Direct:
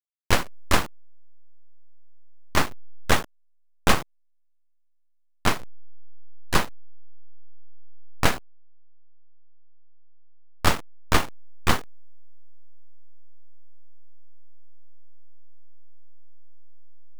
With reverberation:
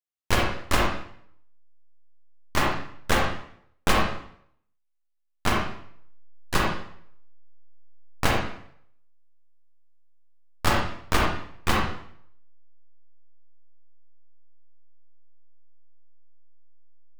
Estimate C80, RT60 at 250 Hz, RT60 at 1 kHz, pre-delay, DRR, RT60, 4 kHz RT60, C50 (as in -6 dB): 5.5 dB, 0.65 s, 0.65 s, 36 ms, -1.5 dB, 0.65 s, 0.55 s, 1.5 dB